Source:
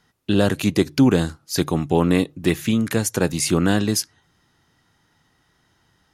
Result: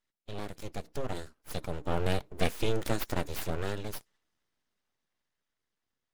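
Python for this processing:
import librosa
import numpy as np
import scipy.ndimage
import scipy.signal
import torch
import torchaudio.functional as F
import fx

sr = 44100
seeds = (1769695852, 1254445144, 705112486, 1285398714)

y = fx.spec_quant(x, sr, step_db=15)
y = fx.doppler_pass(y, sr, speed_mps=8, closest_m=3.8, pass_at_s=2.59)
y = np.abs(y)
y = y * librosa.db_to_amplitude(-5.5)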